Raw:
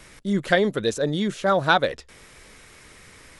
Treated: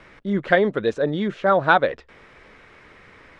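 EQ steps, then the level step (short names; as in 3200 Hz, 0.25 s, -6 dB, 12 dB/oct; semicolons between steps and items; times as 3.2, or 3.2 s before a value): LPF 2200 Hz 12 dB/oct; low shelf 190 Hz -7.5 dB; +3.5 dB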